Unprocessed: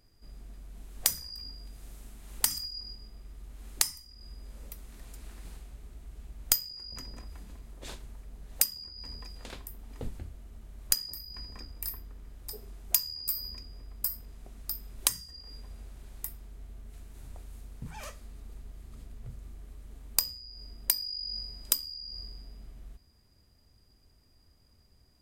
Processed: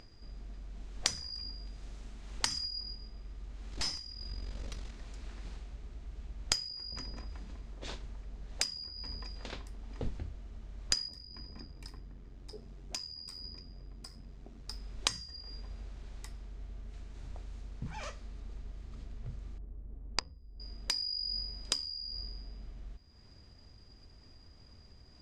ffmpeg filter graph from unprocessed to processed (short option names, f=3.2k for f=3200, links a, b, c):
-filter_complex "[0:a]asettb=1/sr,asplit=3[a][b][c];[a]atrim=end=3.724[d];[b]atrim=start=3.72:end=4.91,asetpts=PTS-STARTPTS,afade=t=in:d=0.004:c=qsin,afade=t=out:st=1.186:d=0.004:c=qsin,equalizer=f=4.2k:w=0.98:g=4,acontrast=90,aeval=exprs='(tanh(25.1*val(0)+0.7)-tanh(0.7))/25.1':c=same[e];[c]atrim=start=4.906[f];[d][e]acrossfade=d=0.004:c1=hsin:c2=qsin[g];[g][f]acrossfade=d=0.004:c1=qsin:c2=hsin,asettb=1/sr,asplit=3[h][i][j];[h]atrim=end=11.084[k];[i]atrim=start=11.08:end=14.69,asetpts=PTS-STARTPTS,afade=t=in:d=0.004:c=qsin,afade=t=out:st=3.606:d=0.004:c=qsin,equalizer=f=240:t=o:w=1.9:g=8.5,flanger=delay=1:depth=2.3:regen=-56:speed=1.9:shape=triangular,tremolo=f=91:d=0.519[l];[j]atrim=start=14.686[m];[k][l]acrossfade=d=0.004:c1=hsin:c2=qsin[n];[n][m]acrossfade=d=0.004:c1=qsin:c2=hsin,asettb=1/sr,asplit=3[o][p][q];[o]atrim=end=19.584[r];[p]atrim=start=19.58:end=20.6,asetpts=PTS-STARTPTS,afade=t=in:d=0.004:c=qsin,afade=t=out:st=1.016:d=0.004:c=qsin,lowpass=7.6k,adynamicsmooth=sensitivity=4:basefreq=580[s];[q]atrim=start=20.596[t];[r][s]acrossfade=d=0.004:c1=hsin:c2=qsin[u];[u][t]acrossfade=d=0.004:c1=qsin:c2=hsin,lowpass=f=6.3k:w=0.5412,lowpass=f=6.3k:w=1.3066,acompressor=mode=upward:threshold=-48dB:ratio=2.5,volume=1dB"